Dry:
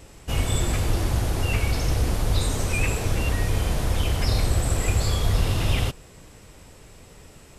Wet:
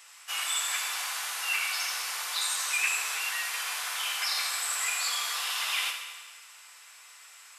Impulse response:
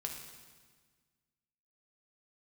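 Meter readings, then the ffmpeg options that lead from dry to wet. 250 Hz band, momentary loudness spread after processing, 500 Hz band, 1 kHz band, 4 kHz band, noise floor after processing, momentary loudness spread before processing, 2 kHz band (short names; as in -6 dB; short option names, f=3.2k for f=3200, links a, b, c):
under -40 dB, 12 LU, -21.5 dB, -2.5 dB, +3.0 dB, -52 dBFS, 2 LU, +2.5 dB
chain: -filter_complex "[0:a]highpass=f=1.1k:w=0.5412,highpass=f=1.1k:w=1.3066[a];[1:a]atrim=start_sample=2205[b];[a][b]afir=irnorm=-1:irlink=0,volume=3.5dB"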